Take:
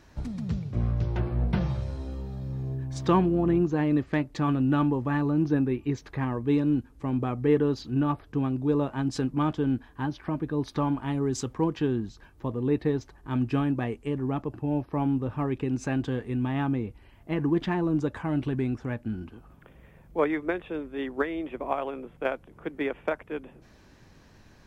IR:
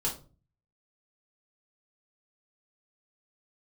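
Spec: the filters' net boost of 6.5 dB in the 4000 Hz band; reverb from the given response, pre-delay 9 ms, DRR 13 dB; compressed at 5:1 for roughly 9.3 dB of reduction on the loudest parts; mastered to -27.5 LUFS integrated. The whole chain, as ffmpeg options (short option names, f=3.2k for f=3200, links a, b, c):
-filter_complex "[0:a]equalizer=f=4k:t=o:g=8.5,acompressor=threshold=-28dB:ratio=5,asplit=2[a][b];[1:a]atrim=start_sample=2205,adelay=9[c];[b][c]afir=irnorm=-1:irlink=0,volume=-18dB[d];[a][d]amix=inputs=2:normalize=0,volume=6dB"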